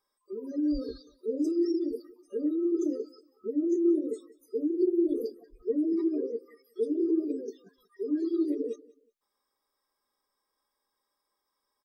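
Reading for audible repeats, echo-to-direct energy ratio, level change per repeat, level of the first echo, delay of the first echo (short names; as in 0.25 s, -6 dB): 2, -22.0 dB, -11.5 dB, -22.5 dB, 0.185 s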